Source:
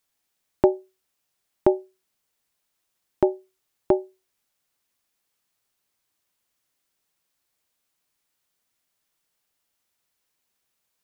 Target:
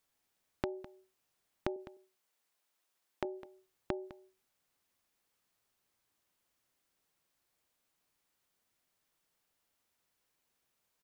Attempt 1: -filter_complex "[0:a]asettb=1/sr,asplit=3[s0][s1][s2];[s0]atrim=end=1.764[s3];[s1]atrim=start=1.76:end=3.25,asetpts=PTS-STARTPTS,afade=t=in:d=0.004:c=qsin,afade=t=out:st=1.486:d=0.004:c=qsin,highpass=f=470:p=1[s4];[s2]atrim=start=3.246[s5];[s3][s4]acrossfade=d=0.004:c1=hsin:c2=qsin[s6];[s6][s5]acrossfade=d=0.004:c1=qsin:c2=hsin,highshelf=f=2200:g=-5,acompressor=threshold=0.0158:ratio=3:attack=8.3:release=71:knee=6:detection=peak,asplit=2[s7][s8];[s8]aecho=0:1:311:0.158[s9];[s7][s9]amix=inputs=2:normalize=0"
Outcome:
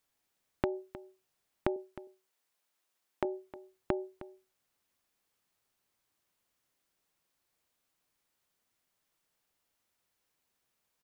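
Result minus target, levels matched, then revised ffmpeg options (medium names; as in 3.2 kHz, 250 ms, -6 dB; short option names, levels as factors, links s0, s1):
echo 105 ms late; compression: peak gain reduction -5.5 dB
-filter_complex "[0:a]asettb=1/sr,asplit=3[s0][s1][s2];[s0]atrim=end=1.764[s3];[s1]atrim=start=1.76:end=3.25,asetpts=PTS-STARTPTS,afade=t=in:d=0.004:c=qsin,afade=t=out:st=1.486:d=0.004:c=qsin,highpass=f=470:p=1[s4];[s2]atrim=start=3.246[s5];[s3][s4]acrossfade=d=0.004:c1=hsin:c2=qsin[s6];[s6][s5]acrossfade=d=0.004:c1=qsin:c2=hsin,highshelf=f=2200:g=-5,acompressor=threshold=0.00631:ratio=3:attack=8.3:release=71:knee=6:detection=peak,asplit=2[s7][s8];[s8]aecho=0:1:206:0.158[s9];[s7][s9]amix=inputs=2:normalize=0"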